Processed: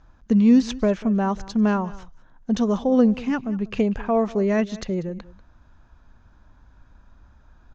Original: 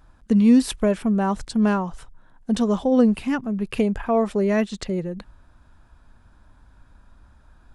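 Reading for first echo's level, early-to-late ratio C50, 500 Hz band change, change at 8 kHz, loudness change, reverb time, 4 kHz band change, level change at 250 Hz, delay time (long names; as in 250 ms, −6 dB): −19.5 dB, no reverb audible, −0.5 dB, can't be measured, −0.5 dB, no reverb audible, −2.5 dB, 0.0 dB, 191 ms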